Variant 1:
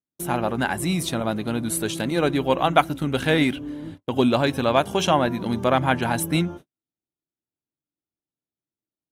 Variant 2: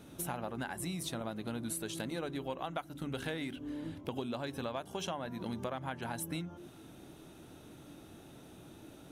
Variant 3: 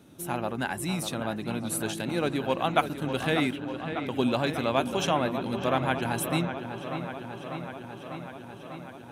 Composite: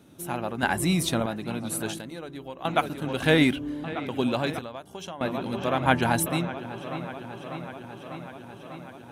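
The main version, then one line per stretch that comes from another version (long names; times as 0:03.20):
3
0:00.63–0:01.26: punch in from 1
0:01.98–0:02.65: punch in from 2
0:03.23–0:03.84: punch in from 1
0:04.59–0:05.21: punch in from 2
0:05.86–0:06.26: punch in from 1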